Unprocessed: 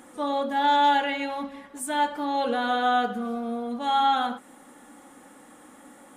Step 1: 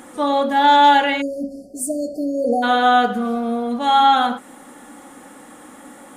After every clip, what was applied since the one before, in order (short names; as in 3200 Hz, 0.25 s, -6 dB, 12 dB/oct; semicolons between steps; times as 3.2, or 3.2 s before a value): spectral delete 1.21–2.63, 760–4300 Hz; gain +8.5 dB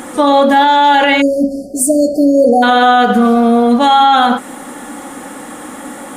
maximiser +14 dB; gain -1 dB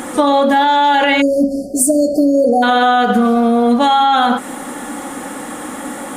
compressor, threshold -11 dBFS, peak gain reduction 6 dB; gain +2 dB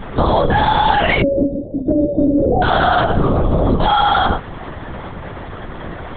LPC vocoder at 8 kHz whisper; gain -2 dB